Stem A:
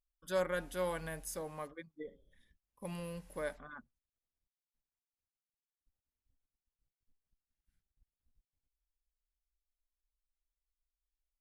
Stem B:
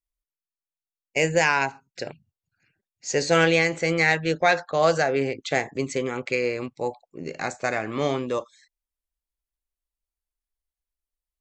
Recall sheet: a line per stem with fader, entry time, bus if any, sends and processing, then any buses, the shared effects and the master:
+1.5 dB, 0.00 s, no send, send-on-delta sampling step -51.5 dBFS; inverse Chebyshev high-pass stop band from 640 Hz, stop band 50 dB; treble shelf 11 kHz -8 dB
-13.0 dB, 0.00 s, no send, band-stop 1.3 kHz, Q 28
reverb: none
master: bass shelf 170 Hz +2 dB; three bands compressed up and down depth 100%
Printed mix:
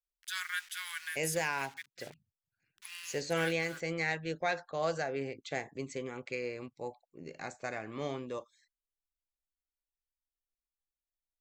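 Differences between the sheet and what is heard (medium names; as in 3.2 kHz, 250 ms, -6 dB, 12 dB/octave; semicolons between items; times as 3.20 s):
stem A +1.5 dB -> +10.0 dB; master: missing three bands compressed up and down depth 100%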